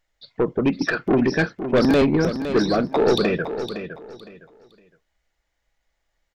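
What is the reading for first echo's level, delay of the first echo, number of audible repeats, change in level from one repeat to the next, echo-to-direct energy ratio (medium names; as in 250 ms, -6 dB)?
-10.0 dB, 511 ms, 3, -12.0 dB, -9.5 dB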